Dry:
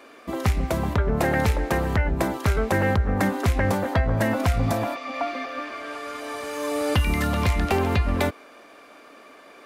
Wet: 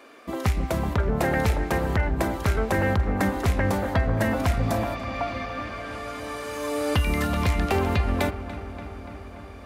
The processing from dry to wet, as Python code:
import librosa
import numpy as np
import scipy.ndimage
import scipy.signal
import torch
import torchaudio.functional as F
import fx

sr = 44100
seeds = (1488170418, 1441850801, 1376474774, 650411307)

y = fx.echo_filtered(x, sr, ms=289, feedback_pct=77, hz=3600.0, wet_db=-13.5)
y = y * librosa.db_to_amplitude(-1.5)